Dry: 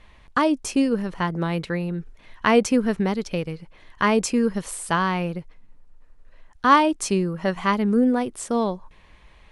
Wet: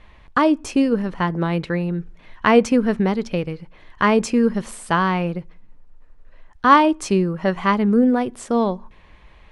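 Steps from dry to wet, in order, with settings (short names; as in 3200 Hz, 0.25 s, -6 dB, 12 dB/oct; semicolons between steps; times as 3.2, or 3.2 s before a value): LPF 3400 Hz 6 dB/oct; on a send: reverb RT60 0.45 s, pre-delay 3 ms, DRR 21.5 dB; on the sum: gain +3.5 dB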